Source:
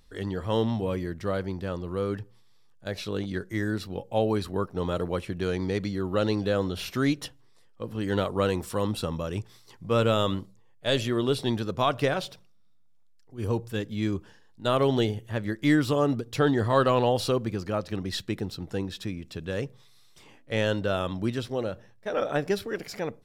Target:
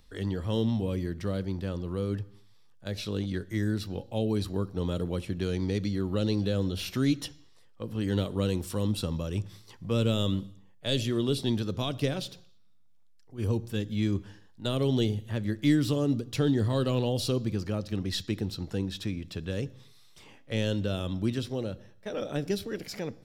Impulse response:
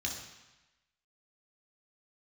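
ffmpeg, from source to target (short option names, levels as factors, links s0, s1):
-filter_complex "[0:a]acrossover=split=430|3000[s0][s1][s2];[s1]acompressor=threshold=0.00631:ratio=3[s3];[s0][s3][s2]amix=inputs=3:normalize=0,asplit=2[s4][s5];[1:a]atrim=start_sample=2205,afade=t=out:st=0.37:d=0.01,atrim=end_sample=16758,lowpass=7700[s6];[s5][s6]afir=irnorm=-1:irlink=0,volume=0.119[s7];[s4][s7]amix=inputs=2:normalize=0"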